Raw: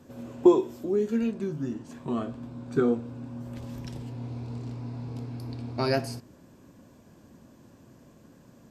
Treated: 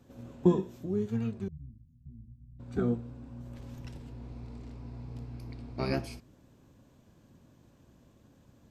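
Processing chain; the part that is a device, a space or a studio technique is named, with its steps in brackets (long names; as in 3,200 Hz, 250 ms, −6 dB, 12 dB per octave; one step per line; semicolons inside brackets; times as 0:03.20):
0:01.48–0:02.60: inverse Chebyshev band-stop filter 630–7,200 Hz, stop band 70 dB
octave pedal (pitch-shifted copies added −12 semitones −1 dB)
level −8.5 dB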